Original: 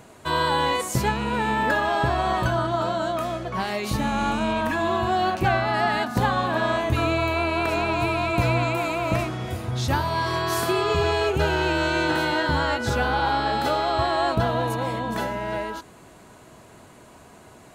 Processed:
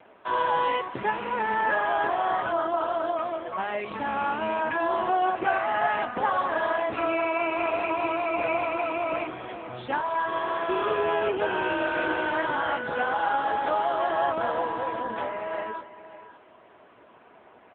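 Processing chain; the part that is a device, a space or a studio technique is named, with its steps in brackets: 11.44–12.71 s: dynamic bell 5.6 kHz, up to +5 dB, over -56 dBFS, Q 4.5; satellite phone (band-pass 350–3100 Hz; delay 563 ms -14.5 dB; AMR-NB 6.7 kbps 8 kHz)

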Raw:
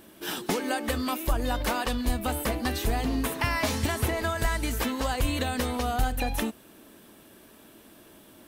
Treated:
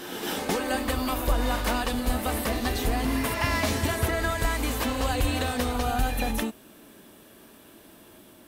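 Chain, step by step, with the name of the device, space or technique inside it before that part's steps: reverse reverb (reverse; reverberation RT60 1.8 s, pre-delay 82 ms, DRR 3.5 dB; reverse)

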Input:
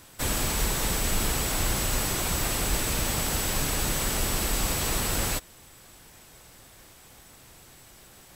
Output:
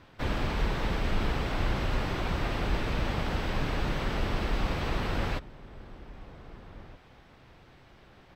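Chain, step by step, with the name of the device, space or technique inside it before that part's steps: shout across a valley (distance through air 300 m; echo from a far wall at 270 m, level -17 dB)

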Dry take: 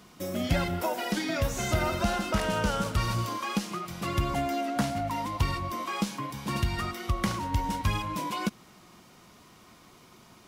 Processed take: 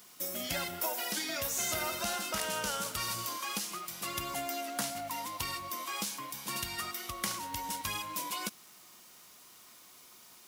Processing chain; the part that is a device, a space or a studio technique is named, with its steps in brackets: turntable without a phono preamp (RIAA curve recording; white noise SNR 26 dB); trim -6.5 dB

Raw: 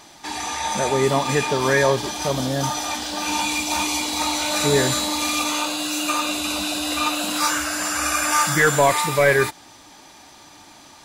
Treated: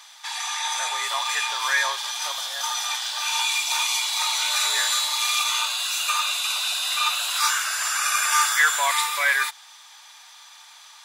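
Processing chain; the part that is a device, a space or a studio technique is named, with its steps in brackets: headphones lying on a table (high-pass 1 kHz 24 dB/octave; peaking EQ 3.5 kHz +6 dB 0.2 oct)

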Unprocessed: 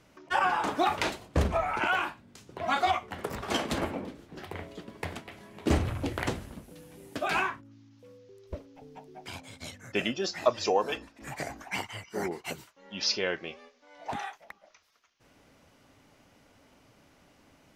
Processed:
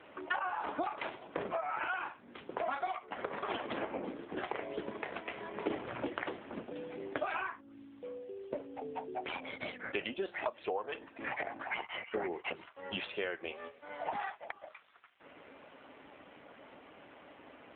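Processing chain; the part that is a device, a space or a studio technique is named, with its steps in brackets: voicemail (band-pass 330–3200 Hz; compression 12:1, threshold -43 dBFS, peak gain reduction 25 dB; trim +11 dB; AMR-NB 7.4 kbps 8 kHz)

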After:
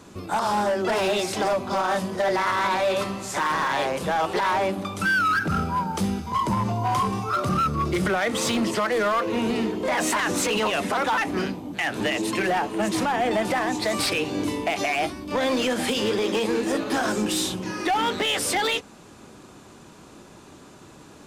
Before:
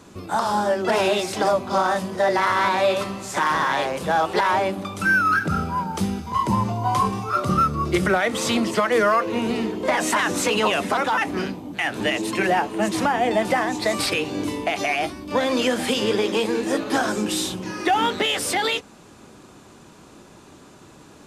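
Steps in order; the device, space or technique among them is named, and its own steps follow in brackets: limiter into clipper (peak limiter -13.5 dBFS, peak gain reduction 5 dB; hard clipper -18.5 dBFS, distortion -16 dB)

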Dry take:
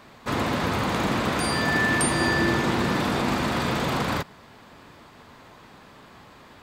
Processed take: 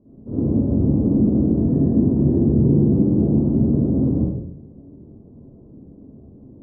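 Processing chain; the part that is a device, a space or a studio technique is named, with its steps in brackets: next room (low-pass 380 Hz 24 dB/octave; reverberation RT60 0.70 s, pre-delay 45 ms, DRR -9.5 dB)

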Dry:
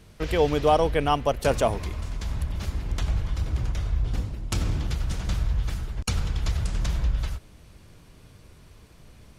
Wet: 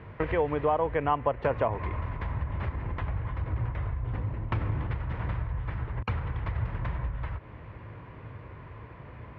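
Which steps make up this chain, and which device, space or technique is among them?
bass amplifier (compression 5:1, threshold -33 dBFS, peak gain reduction 16 dB; cabinet simulation 64–2300 Hz, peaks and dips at 110 Hz +6 dB, 200 Hz -5 dB, 520 Hz +3 dB, 1 kHz +9 dB, 1.9 kHz +5 dB); trim +6.5 dB

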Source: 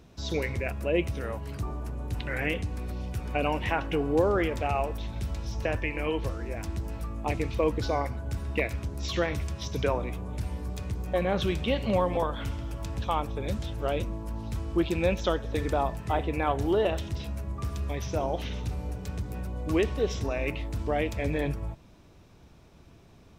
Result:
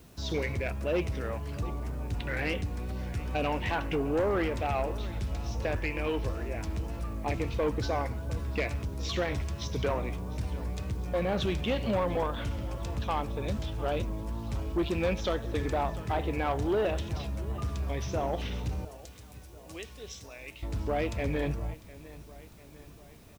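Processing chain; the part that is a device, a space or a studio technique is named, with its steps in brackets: 18.85–20.63 s: pre-emphasis filter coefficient 0.9; feedback delay 699 ms, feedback 55%, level -20 dB; compact cassette (saturation -22 dBFS, distortion -14 dB; low-pass 8.4 kHz; wow and flutter; white noise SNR 31 dB)

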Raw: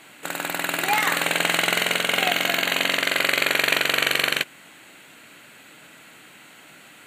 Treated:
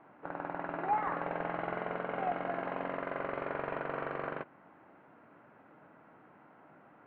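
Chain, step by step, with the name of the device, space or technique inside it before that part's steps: overdriven synthesiser ladder filter (saturation -17.5 dBFS, distortion -10 dB; four-pole ladder low-pass 1.3 kHz, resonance 30%)

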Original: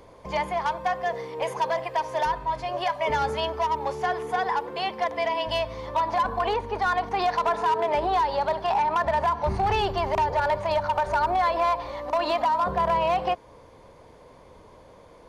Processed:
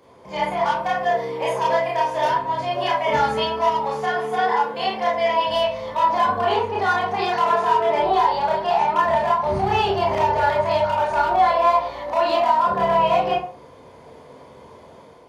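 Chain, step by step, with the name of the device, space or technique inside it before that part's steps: far laptop microphone (reverberation RT60 0.40 s, pre-delay 23 ms, DRR -4.5 dB; high-pass 130 Hz 12 dB/octave; level rider gain up to 5 dB); trim -4.5 dB

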